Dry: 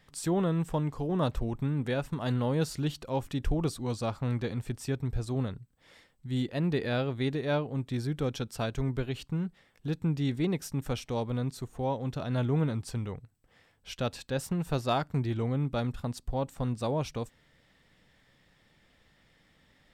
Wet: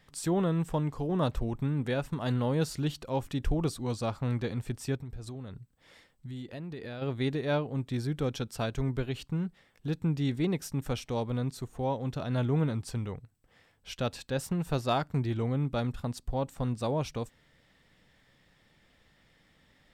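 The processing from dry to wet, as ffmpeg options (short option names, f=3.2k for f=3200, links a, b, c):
-filter_complex "[0:a]asplit=3[a][b][c];[a]afade=t=out:st=4.96:d=0.02[d];[b]acompressor=threshold=-37dB:ratio=6:attack=3.2:release=140:knee=1:detection=peak,afade=t=in:st=4.96:d=0.02,afade=t=out:st=7.01:d=0.02[e];[c]afade=t=in:st=7.01:d=0.02[f];[d][e][f]amix=inputs=3:normalize=0"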